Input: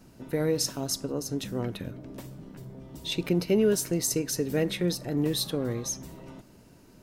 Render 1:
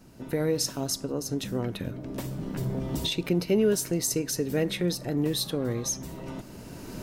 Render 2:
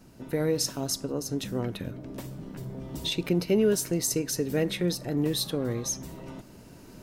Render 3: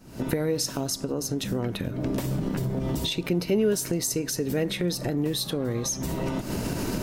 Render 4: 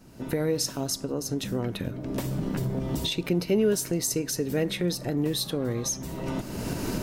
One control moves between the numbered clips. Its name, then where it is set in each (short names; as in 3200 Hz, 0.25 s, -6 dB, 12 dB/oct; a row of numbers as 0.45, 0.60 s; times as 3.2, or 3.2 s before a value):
recorder AGC, rising by: 13, 5, 84, 32 dB/s